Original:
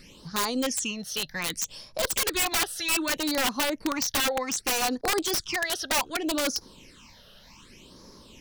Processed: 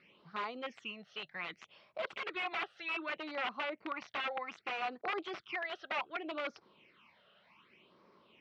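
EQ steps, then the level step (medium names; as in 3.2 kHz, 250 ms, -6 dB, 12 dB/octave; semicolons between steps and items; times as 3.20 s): cabinet simulation 190–2400 Hz, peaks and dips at 270 Hz -10 dB, 500 Hz -6 dB, 920 Hz -6 dB, 1.7 kHz -8 dB; bass shelf 400 Hz -11.5 dB; -3.0 dB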